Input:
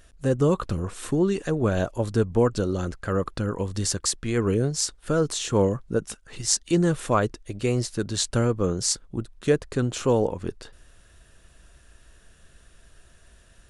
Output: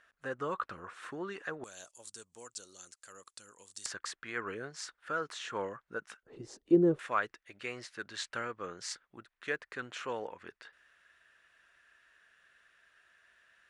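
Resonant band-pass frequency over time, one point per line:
resonant band-pass, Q 2
1,500 Hz
from 0:01.64 7,800 Hz
from 0:03.86 1,600 Hz
from 0:06.23 380 Hz
from 0:06.99 1,800 Hz

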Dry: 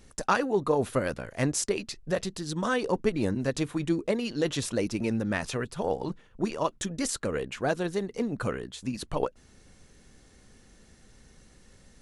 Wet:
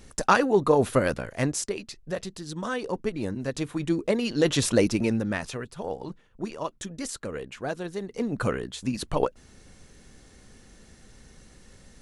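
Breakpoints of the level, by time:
0:01.15 +5 dB
0:01.74 −3 dB
0:03.35 −3 dB
0:04.77 +8 dB
0:05.64 −4 dB
0:07.94 −4 dB
0:08.40 +4 dB

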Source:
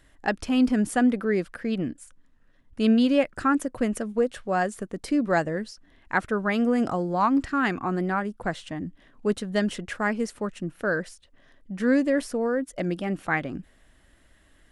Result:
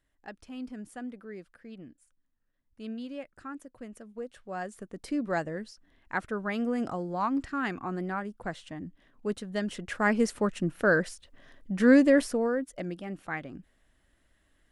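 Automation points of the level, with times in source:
0:03.89 −18.5 dB
0:05.07 −7 dB
0:09.66 −7 dB
0:10.18 +2.5 dB
0:12.14 +2.5 dB
0:12.97 −9.5 dB

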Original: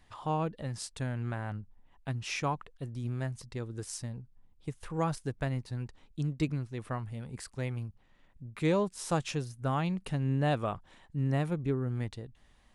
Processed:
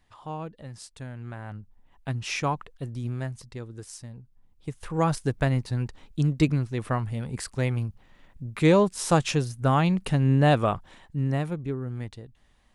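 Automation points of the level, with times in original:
0:01.18 −4 dB
0:02.13 +5 dB
0:02.92 +5 dB
0:04.03 −3 dB
0:05.23 +9 dB
0:10.70 +9 dB
0:11.68 0 dB

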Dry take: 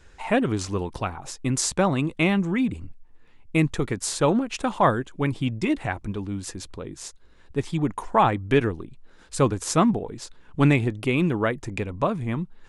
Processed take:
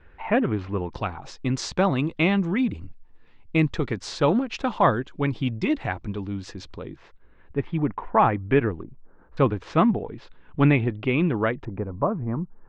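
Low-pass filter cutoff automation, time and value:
low-pass filter 24 dB per octave
2,600 Hz
from 0:00.93 5,100 Hz
from 0:06.96 2,500 Hz
from 0:08.83 1,300 Hz
from 0:09.37 3,200 Hz
from 0:11.65 1,300 Hz

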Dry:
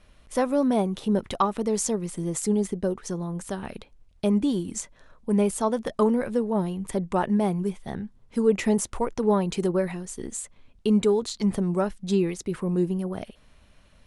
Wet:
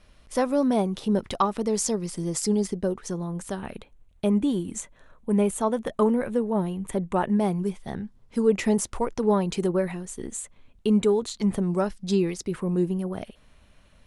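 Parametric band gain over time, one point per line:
parametric band 5,000 Hz 0.42 octaves
+4 dB
from 0:01.88 +11 dB
from 0:02.75 −0.5 dB
from 0:03.61 −10.5 dB
from 0:07.39 +1.5 dB
from 0:09.59 −5 dB
from 0:11.70 +6 dB
from 0:12.49 −2.5 dB

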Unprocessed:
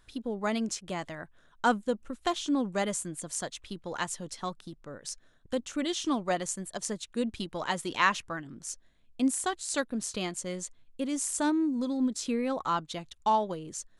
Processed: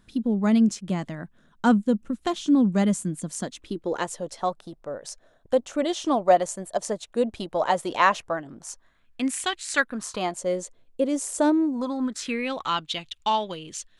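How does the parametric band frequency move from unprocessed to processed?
parametric band +14.5 dB 1.3 octaves
0:03.34 200 Hz
0:04.30 640 Hz
0:08.48 640 Hz
0:09.48 2,800 Hz
0:10.55 500 Hz
0:11.51 500 Hz
0:12.51 3,000 Hz

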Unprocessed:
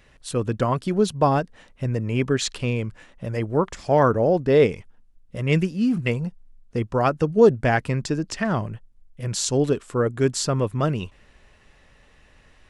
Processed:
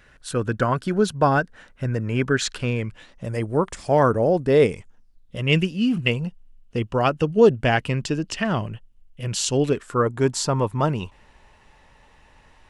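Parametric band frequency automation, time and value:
parametric band +12 dB 0.33 octaves
0:02.75 1,500 Hz
0:03.31 9,000 Hz
0:04.72 9,000 Hz
0:05.41 2,900 Hz
0:09.61 2,900 Hz
0:10.11 900 Hz

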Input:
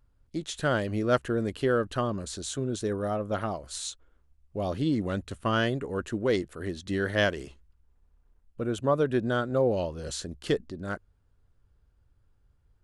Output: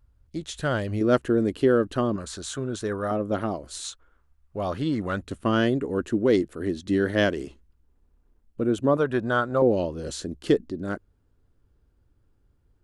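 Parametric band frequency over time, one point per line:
parametric band +9 dB 1.3 octaves
63 Hz
from 0:01.01 300 Hz
from 0:02.16 1,300 Hz
from 0:03.11 300 Hz
from 0:03.84 1,300 Hz
from 0:05.21 290 Hz
from 0:08.97 1,100 Hz
from 0:09.62 300 Hz

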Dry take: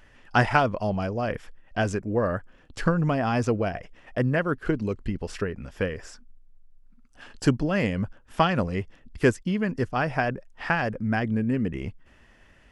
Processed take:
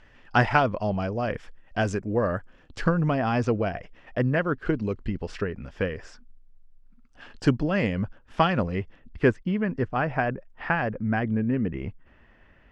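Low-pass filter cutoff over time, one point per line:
0:01.04 5,200 Hz
0:01.79 8,400 Hz
0:02.35 8,400 Hz
0:03.09 4,800 Hz
0:08.43 4,800 Hz
0:09.39 2,500 Hz

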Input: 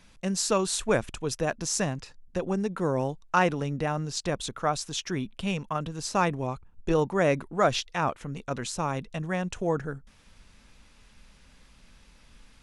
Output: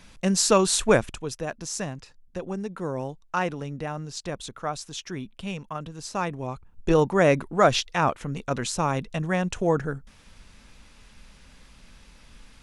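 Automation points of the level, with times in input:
0:00.91 +6 dB
0:01.35 −3.5 dB
0:06.29 −3.5 dB
0:06.90 +4.5 dB

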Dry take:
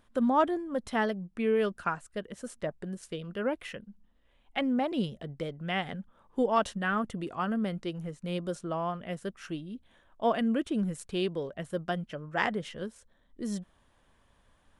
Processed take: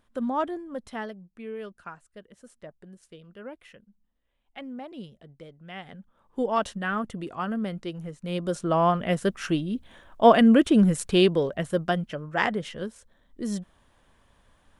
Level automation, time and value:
0:00.71 −2.5 dB
0:01.32 −10 dB
0:05.67 −10 dB
0:06.49 +1 dB
0:08.19 +1 dB
0:08.84 +11.5 dB
0:11.19 +11.5 dB
0:12.35 +4 dB

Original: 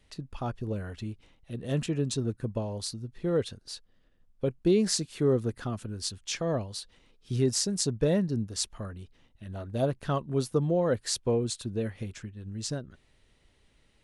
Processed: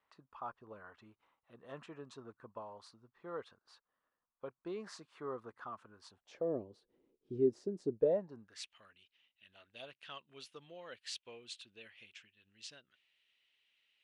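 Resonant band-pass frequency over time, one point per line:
resonant band-pass, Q 3.3
0:06.01 1,100 Hz
0:06.55 360 Hz
0:07.90 360 Hz
0:08.34 1,000 Hz
0:08.68 2,800 Hz

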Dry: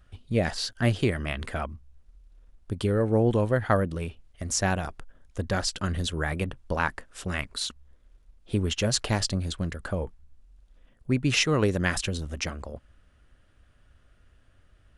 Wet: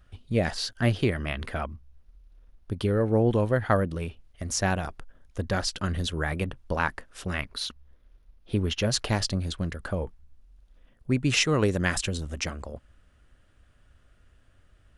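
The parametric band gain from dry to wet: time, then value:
parametric band 7,700 Hz 0.34 octaves
−2.5 dB
from 0:00.85 −11 dB
from 0:03.34 −5 dB
from 0:07.33 −14.5 dB
from 0:08.91 −5 dB
from 0:11.11 +3 dB

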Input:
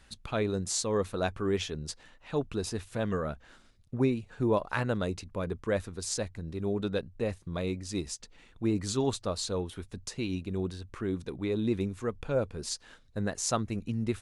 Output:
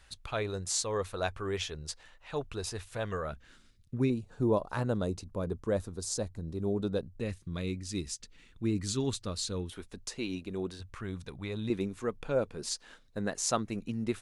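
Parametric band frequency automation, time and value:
parametric band −11 dB 1.4 octaves
230 Hz
from 0:03.32 740 Hz
from 0:04.10 2,200 Hz
from 0:07.20 720 Hz
from 0:09.72 110 Hz
from 0:10.80 330 Hz
from 0:11.70 73 Hz

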